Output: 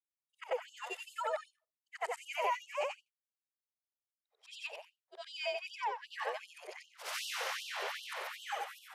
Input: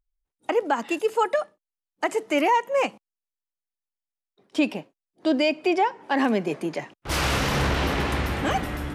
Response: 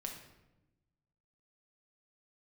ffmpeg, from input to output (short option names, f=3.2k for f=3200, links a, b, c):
-af "afftfilt=real='re':imag='-im':win_size=8192:overlap=0.75,afreqshift=39,afftfilt=real='re*gte(b*sr/1024,380*pow(2800/380,0.5+0.5*sin(2*PI*2.6*pts/sr)))':imag='im*gte(b*sr/1024,380*pow(2800/380,0.5+0.5*sin(2*PI*2.6*pts/sr)))':win_size=1024:overlap=0.75,volume=-6.5dB"